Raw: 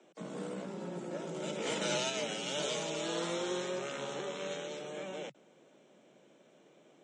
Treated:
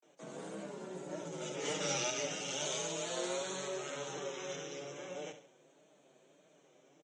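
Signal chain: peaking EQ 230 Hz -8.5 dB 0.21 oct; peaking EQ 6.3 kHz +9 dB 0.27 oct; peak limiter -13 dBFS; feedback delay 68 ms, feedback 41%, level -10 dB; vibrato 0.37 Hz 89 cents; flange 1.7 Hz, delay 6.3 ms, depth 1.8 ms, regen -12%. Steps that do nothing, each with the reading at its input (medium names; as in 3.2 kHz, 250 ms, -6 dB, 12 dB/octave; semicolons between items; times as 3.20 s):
peak limiter -13 dBFS: peak at its input -20.0 dBFS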